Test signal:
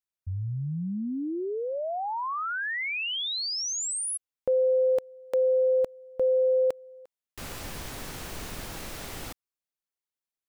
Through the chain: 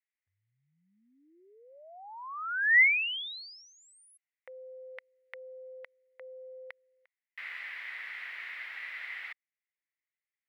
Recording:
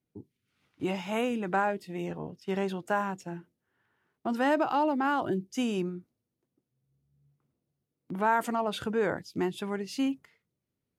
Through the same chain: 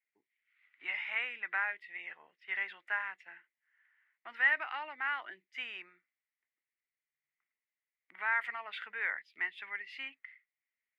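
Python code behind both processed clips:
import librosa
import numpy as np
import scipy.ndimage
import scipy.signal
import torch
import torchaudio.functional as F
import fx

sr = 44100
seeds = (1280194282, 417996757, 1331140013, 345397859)

y = fx.highpass_res(x, sr, hz=2000.0, q=7.1)
y = fx.air_absorb(y, sr, metres=460.0)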